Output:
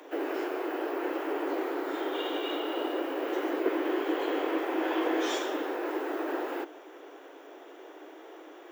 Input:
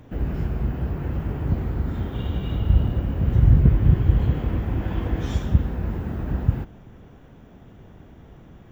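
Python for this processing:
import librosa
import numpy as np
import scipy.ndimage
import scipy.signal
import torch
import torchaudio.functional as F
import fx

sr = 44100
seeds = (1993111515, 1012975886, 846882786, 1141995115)

y = scipy.signal.sosfilt(scipy.signal.butter(16, 300.0, 'highpass', fs=sr, output='sos'), x)
y = y * 10.0 ** (6.0 / 20.0)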